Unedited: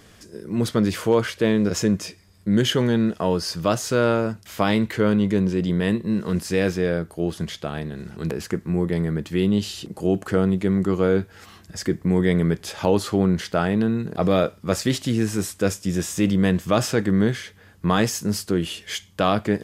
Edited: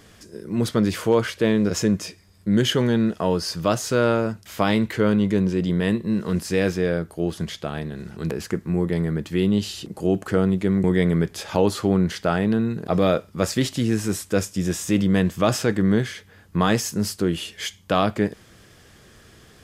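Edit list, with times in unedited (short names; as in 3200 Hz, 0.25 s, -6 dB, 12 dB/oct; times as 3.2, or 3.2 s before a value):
10.84–12.13 cut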